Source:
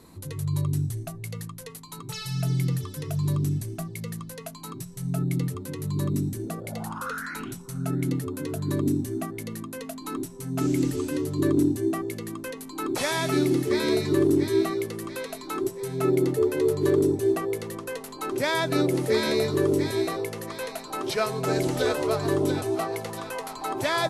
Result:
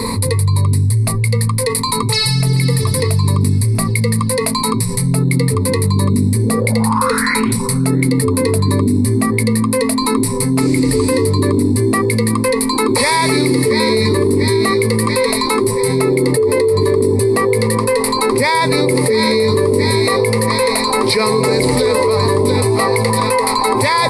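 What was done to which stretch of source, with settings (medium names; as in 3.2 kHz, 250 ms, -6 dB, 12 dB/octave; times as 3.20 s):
2.04–2.49 s: echo throw 440 ms, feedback 40%, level -10 dB
whole clip: rippled EQ curve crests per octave 0.93, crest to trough 17 dB; loudness maximiser +17 dB; level flattener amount 70%; trim -7 dB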